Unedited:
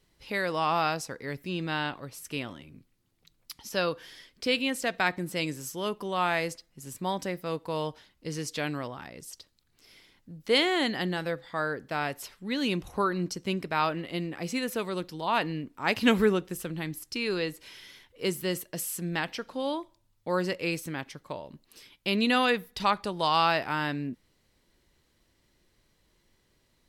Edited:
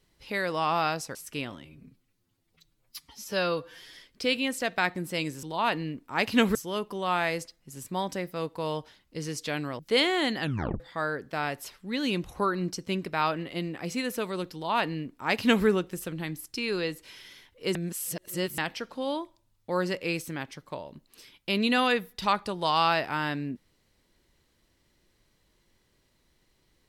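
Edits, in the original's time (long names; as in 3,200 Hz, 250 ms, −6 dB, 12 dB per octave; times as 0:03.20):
0:01.15–0:02.13: remove
0:02.63–0:04.15: time-stretch 1.5×
0:08.89–0:10.37: remove
0:10.99: tape stop 0.39 s
0:15.12–0:16.24: duplicate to 0:05.65
0:18.33–0:19.16: reverse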